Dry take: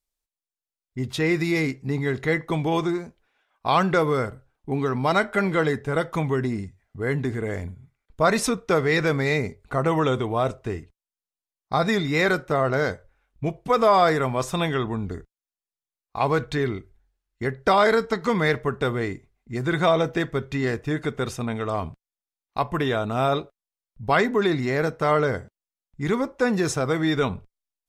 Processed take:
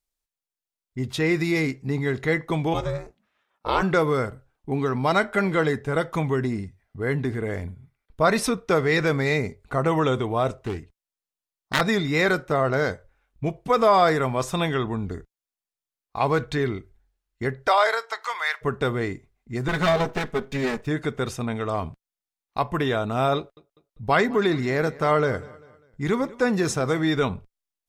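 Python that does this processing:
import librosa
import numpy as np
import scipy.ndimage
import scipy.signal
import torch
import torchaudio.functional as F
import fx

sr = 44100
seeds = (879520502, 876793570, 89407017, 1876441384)

y = fx.ring_mod(x, sr, carrier_hz=210.0, at=(2.73, 3.81), fade=0.02)
y = fx.peak_eq(y, sr, hz=7100.0, db=-6.5, octaves=0.29, at=(6.58, 8.67))
y = fx.self_delay(y, sr, depth_ms=0.7, at=(10.52, 11.81))
y = fx.highpass(y, sr, hz=fx.line((17.66, 480.0), (18.61, 1000.0)), slope=24, at=(17.66, 18.61), fade=0.02)
y = fx.lower_of_two(y, sr, delay_ms=4.7, at=(19.68, 20.87))
y = fx.echo_feedback(y, sr, ms=198, feedback_pct=40, wet_db=-21.0, at=(23.37, 27.0))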